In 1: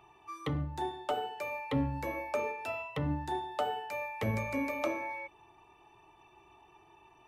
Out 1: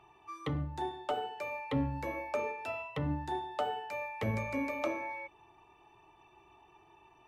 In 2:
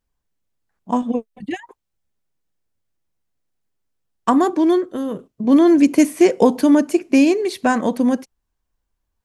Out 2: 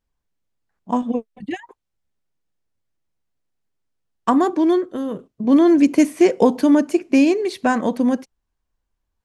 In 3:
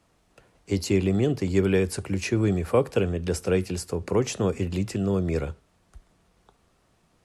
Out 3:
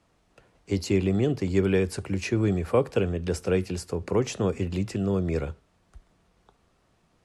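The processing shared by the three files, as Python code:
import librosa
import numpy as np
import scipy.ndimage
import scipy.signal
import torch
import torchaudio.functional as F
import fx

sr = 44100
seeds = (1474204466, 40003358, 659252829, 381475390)

y = fx.high_shelf(x, sr, hz=10000.0, db=-9.5)
y = y * librosa.db_to_amplitude(-1.0)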